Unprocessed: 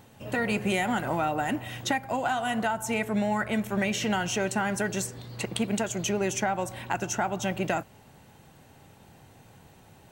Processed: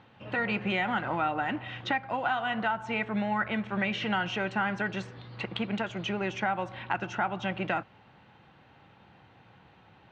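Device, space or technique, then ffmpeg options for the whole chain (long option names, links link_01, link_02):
guitar cabinet: -af "highpass=84,equalizer=frequency=91:width_type=q:width=4:gain=-6,equalizer=frequency=150:width_type=q:width=4:gain=-6,equalizer=frequency=250:width_type=q:width=4:gain=-6,equalizer=frequency=410:width_type=q:width=4:gain=-6,equalizer=frequency=630:width_type=q:width=4:gain=-5,equalizer=frequency=1300:width_type=q:width=4:gain=3,lowpass=frequency=3600:width=0.5412,lowpass=frequency=3600:width=1.3066"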